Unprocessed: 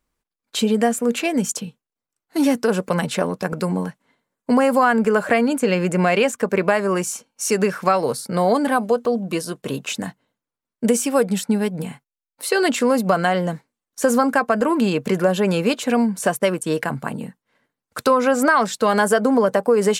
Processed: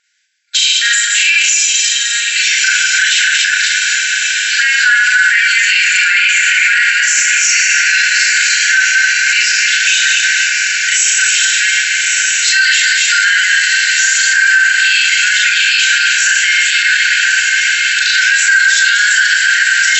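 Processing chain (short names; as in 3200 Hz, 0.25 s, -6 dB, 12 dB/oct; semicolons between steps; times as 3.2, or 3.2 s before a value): regenerating reverse delay 0.13 s, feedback 59%, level -4.5 dB; on a send: diffused feedback echo 1.249 s, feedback 69%, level -8 dB; on the sum: Schroeder reverb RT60 0.37 s, combs from 29 ms, DRR -3.5 dB; FFT band-pass 1400–7800 Hz; maximiser +19 dB; gain -1 dB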